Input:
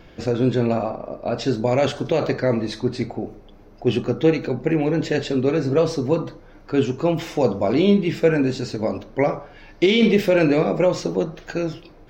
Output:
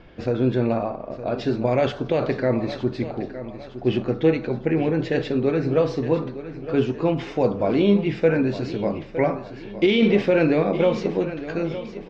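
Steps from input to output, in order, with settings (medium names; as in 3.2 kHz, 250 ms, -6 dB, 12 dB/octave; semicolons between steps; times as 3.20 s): low-pass 3.5 kHz 12 dB/octave; on a send: feedback delay 912 ms, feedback 42%, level -13 dB; on the sum: trim -1.5 dB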